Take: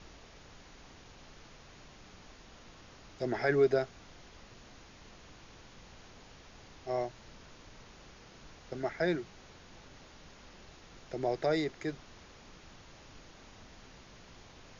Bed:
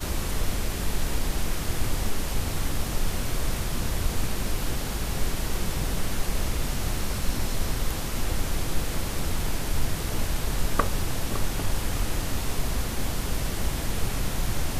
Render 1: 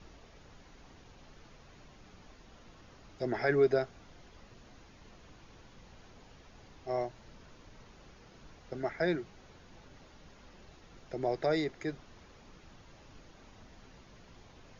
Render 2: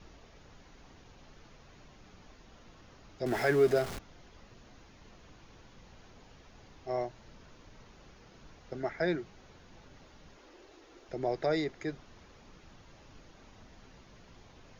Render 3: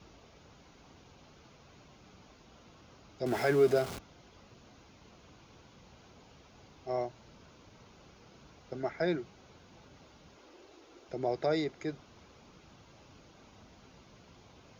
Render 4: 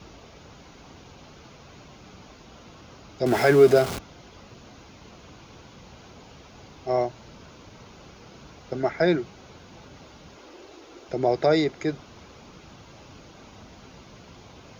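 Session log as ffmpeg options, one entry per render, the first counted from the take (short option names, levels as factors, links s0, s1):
-af "afftdn=nr=6:nf=-56"
-filter_complex "[0:a]asettb=1/sr,asplit=3[s0][s1][s2];[s0]atrim=end=3.264[s3];[s1]atrim=start=3.26:end=3.99,asetpts=PTS-STARTPTS,afade=t=in:d=0.004:c=qsin,afade=t=out:st=0.726:d=0.004:c=qsin,aeval=exprs='val(0)+0.5*0.0168*sgn(val(0))':c=same[s4];[s2]atrim=start=3.986[s5];[s3][s4]acrossfade=d=0.004:c1=hsin:c2=qsin[s6];[s6][s5]acrossfade=d=0.004:c1=qsin:c2=hsin,asettb=1/sr,asplit=3[s7][s8][s9];[s7]atrim=end=10.374[s10];[s8]atrim=start=10.37:end=11.09,asetpts=PTS-STARTPTS,afade=t=in:d=0.004:c=qsin,afade=t=out:st=0.716:d=0.004:c=qsin,lowshelf=f=240:t=q:w=3:g=-10[s11];[s9]atrim=start=11.086[s12];[s10][s11]acrossfade=d=0.004:c1=hsin:c2=qsin[s13];[s13][s12]acrossfade=d=0.004:c1=qsin:c2=hsin"
-af "highpass=65,equalizer=f=1800:t=o:w=0.22:g=-7.5"
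-af "volume=3.16"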